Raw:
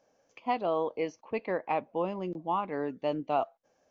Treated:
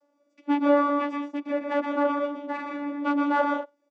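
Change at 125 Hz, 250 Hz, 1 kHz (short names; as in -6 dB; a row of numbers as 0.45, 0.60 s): under -15 dB, +11.5 dB, +4.5 dB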